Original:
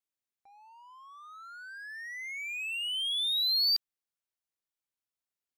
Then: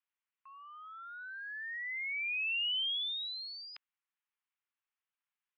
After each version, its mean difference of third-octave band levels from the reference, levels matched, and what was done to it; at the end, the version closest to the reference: 5.0 dB: mistuned SSB +290 Hz 590–2800 Hz; gain +4 dB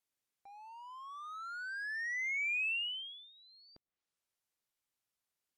2.5 dB: treble ducked by the level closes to 490 Hz, closed at -27 dBFS; gain +3.5 dB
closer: second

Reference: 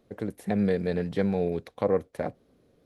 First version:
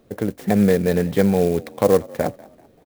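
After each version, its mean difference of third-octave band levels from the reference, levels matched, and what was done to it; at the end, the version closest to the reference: 5.0 dB: on a send: frequency-shifting echo 0.193 s, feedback 40%, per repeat +48 Hz, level -23 dB; on the sum: clock jitter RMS 0.031 ms; gain +9 dB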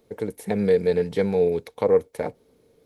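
2.5 dB: high shelf 4000 Hz +10 dB; small resonant body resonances 450/890/2200 Hz, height 10 dB, ringing for 45 ms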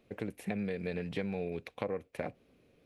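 3.5 dB: bell 2500 Hz +12.5 dB 0.57 oct; compressor, threshold -29 dBFS, peak gain reduction 10.5 dB; gain -3 dB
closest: second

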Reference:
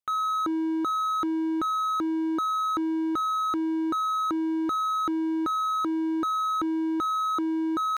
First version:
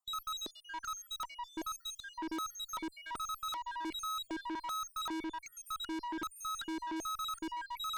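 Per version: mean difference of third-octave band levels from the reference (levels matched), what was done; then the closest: 11.5 dB: random spectral dropouts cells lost 72%; reverse; upward compressor, threshold -47 dBFS; reverse; high shelf 7700 Hz -5 dB; tube stage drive 48 dB, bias 0.3; gain +11 dB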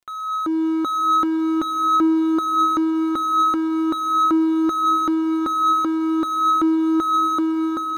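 4.5 dB: AGC gain up to 9 dB; crackle 71/s -41 dBFS; flange 0.44 Hz, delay 2.8 ms, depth 1.1 ms, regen +61%; diffused feedback echo 0.586 s, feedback 56%, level -14 dB; gain +1.5 dB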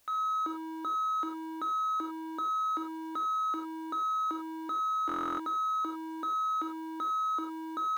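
5.5 dB: BPF 370–6300 Hz; requantised 10-bit, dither triangular; non-linear reverb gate 0.12 s flat, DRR 3.5 dB; stuck buffer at 5.07, samples 1024, times 13; gain -7 dB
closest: second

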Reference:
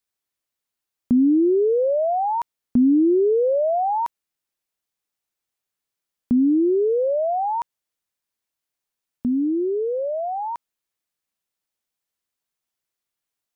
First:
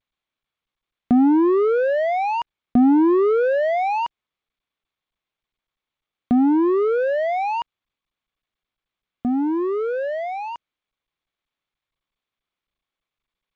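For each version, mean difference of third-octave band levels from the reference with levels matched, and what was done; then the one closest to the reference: 5.5 dB: in parallel at +2.5 dB: limiter -21.5 dBFS, peak gain reduction 10 dB; on the sum: power-law curve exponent 2; G.722 64 kbps 16000 Hz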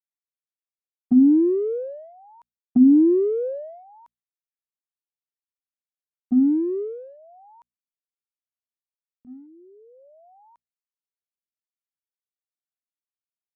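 2.5 dB: gate -17 dBFS, range -34 dB; notches 60/120/180/240 Hz; dynamic EQ 330 Hz, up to -4 dB, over -29 dBFS, Q 0.75; gain +7 dB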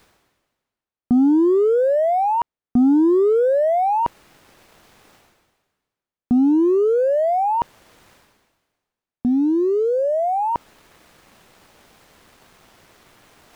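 3.5 dB: LPF 1100 Hz 6 dB/oct; reverse; upward compressor, threshold -19 dBFS; reverse; sample leveller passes 1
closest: second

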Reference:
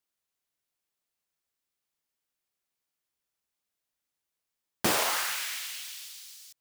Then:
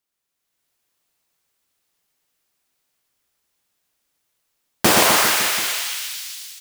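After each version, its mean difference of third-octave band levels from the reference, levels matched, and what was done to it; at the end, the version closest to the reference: 5.5 dB: AGC gain up to 7.5 dB; reverse bouncing-ball echo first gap 0.12 s, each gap 1.1×, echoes 5; gain +3.5 dB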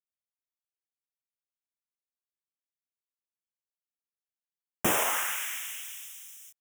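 1.5 dB: gate with hold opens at -38 dBFS; Butterworth band-stop 4400 Hz, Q 1.7; high shelf 10000 Hz +3.5 dB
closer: second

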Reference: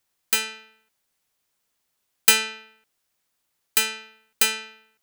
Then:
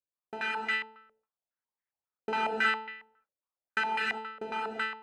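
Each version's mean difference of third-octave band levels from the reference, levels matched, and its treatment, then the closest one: 15.0 dB: gate with hold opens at -53 dBFS; non-linear reverb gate 0.42 s flat, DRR -6 dB; stepped low-pass 7.3 Hz 560–1900 Hz; gain -7 dB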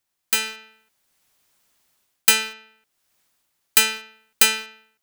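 2.5 dB: notch 470 Hz, Q 12; AGC gain up to 12.5 dB; in parallel at -9.5 dB: bit-crush 5-bit; on the sum: gain -3 dB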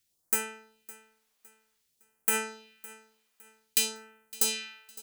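4.5 dB: limiter -11.5 dBFS, peak gain reduction 10 dB; phaser stages 2, 0.54 Hz, lowest notch 120–3900 Hz; on a send: feedback echo 0.56 s, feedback 34%, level -20 dB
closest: second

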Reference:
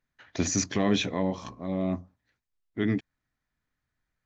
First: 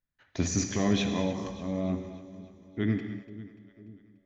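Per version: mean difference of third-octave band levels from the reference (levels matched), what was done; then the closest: 4.0 dB: gate -51 dBFS, range -7 dB; low shelf 140 Hz +8.5 dB; split-band echo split 490 Hz, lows 0.496 s, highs 0.292 s, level -15.5 dB; non-linear reverb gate 0.26 s flat, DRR 6 dB; gain -4 dB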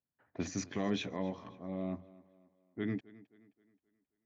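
2.0 dB: low-pass opened by the level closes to 880 Hz, open at -21 dBFS; HPF 91 Hz; high shelf 6100 Hz -9.5 dB; on a send: tape echo 0.265 s, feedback 46%, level -19 dB, low-pass 5600 Hz; on the sum: gain -9 dB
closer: second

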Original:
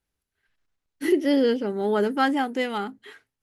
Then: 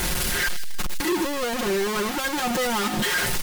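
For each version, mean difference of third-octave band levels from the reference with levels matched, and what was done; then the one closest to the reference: 16.0 dB: infinite clipping; comb 5.6 ms, depth 77%; on a send: thin delay 0.154 s, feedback 36%, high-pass 3400 Hz, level -8 dB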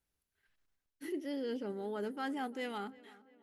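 3.5 dB: ending faded out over 1.14 s; reverse; compressor 6:1, threshold -32 dBFS, peak gain reduction 16 dB; reverse; high shelf 8500 Hz +5 dB; darkening echo 0.344 s, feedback 51%, low-pass 2900 Hz, level -20.5 dB; gain -4.5 dB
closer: second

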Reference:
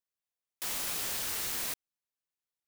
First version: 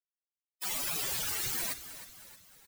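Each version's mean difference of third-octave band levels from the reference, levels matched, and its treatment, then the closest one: 2.0 dB: per-bin expansion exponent 3; bell 130 Hz +10 dB 0.32 oct; frequency-shifting echo 0.312 s, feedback 49%, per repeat -67 Hz, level -13 dB; gain +7.5 dB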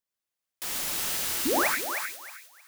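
4.5 dB: painted sound rise, 1.45–1.68, 230–2700 Hz -28 dBFS; thinning echo 0.312 s, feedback 29%, high-pass 1000 Hz, level -4.5 dB; non-linear reverb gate 0.14 s rising, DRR 2.5 dB; gain +1.5 dB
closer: first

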